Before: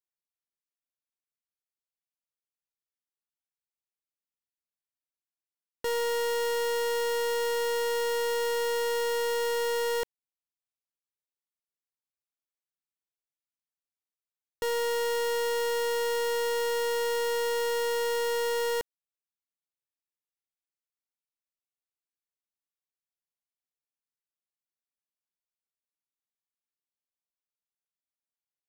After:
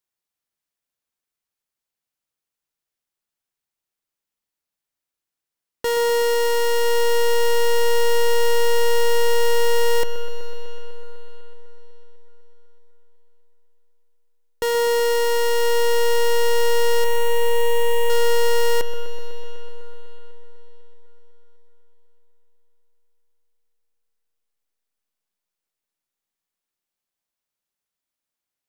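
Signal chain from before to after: 17.04–18.1 fixed phaser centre 980 Hz, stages 8; dark delay 0.125 s, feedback 83%, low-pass 2000 Hz, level -11 dB; on a send at -17 dB: reverb RT60 4.3 s, pre-delay 90 ms; on the sum: gain +8 dB

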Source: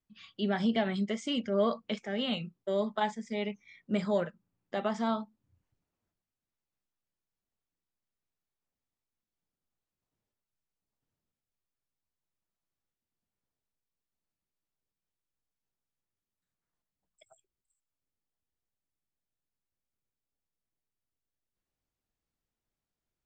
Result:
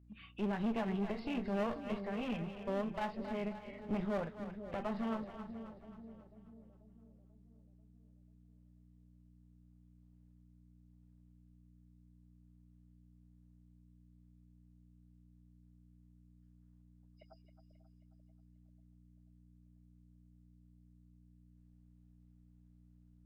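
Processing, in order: nonlinear frequency compression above 2100 Hz 1.5:1; bell 4700 Hz -3 dB; in parallel at +1 dB: compressor, threshold -44 dBFS, peak gain reduction 19.5 dB; on the sum: tilt -2 dB/oct; hum 60 Hz, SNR 21 dB; one-sided clip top -38.5 dBFS, bottom -19.5 dBFS; on a send: split-band echo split 570 Hz, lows 0.489 s, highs 0.268 s, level -9.5 dB; on the sum: gain -6.5 dB

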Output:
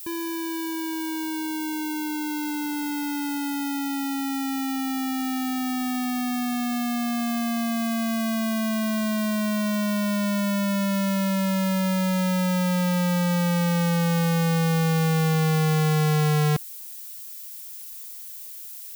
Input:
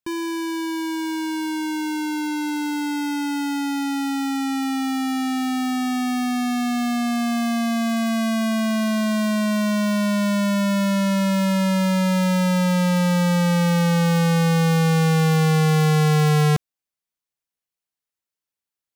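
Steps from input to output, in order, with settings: added noise violet -35 dBFS; gain -4 dB

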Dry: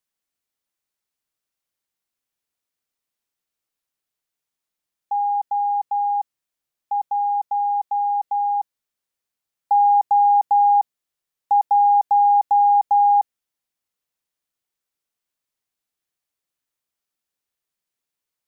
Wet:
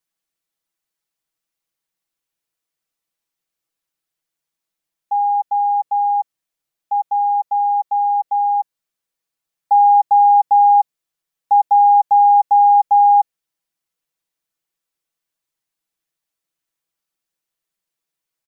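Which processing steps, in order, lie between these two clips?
comb 6.1 ms

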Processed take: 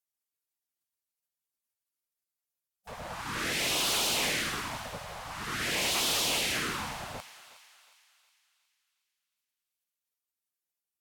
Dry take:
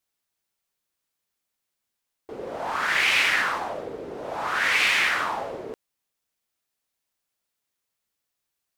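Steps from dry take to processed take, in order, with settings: spectral gate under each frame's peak -15 dB weak; high shelf 7700 Hz +10 dB; hard clip -33 dBFS, distortion -7 dB; wide varispeed 0.797×; thinning echo 0.363 s, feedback 49%, high-pass 910 Hz, level -14.5 dB; gain +6 dB

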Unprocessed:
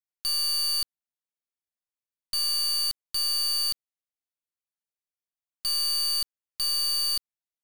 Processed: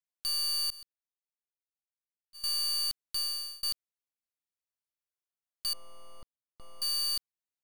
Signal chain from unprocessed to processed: 0.7–2.44 gate -26 dBFS, range -29 dB; 3.17–3.63 fade out; 5.73–6.82 polynomial smoothing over 65 samples; gain -4.5 dB

